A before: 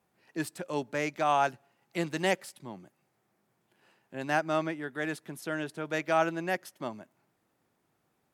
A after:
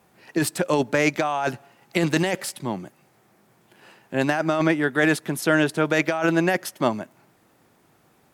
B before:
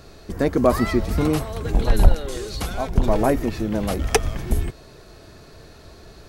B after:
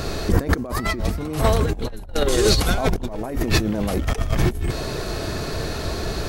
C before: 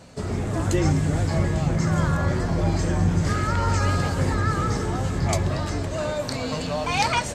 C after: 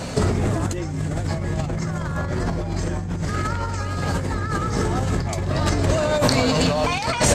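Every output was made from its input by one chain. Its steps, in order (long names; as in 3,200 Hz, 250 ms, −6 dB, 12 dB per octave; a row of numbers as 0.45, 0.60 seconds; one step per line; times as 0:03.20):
compressor whose output falls as the input rises −32 dBFS, ratio −1
loudness normalisation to −23 LKFS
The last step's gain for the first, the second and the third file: +12.0, +9.0, +9.0 decibels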